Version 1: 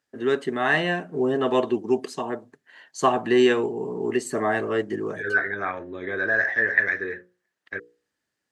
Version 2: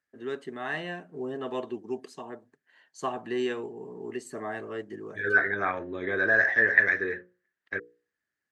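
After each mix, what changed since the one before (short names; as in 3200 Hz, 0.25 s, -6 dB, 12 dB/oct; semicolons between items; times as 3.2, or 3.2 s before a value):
first voice -11.5 dB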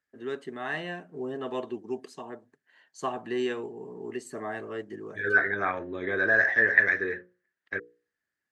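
none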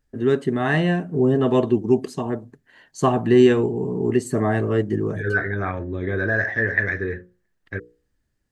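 first voice +10.0 dB; master: remove weighting filter A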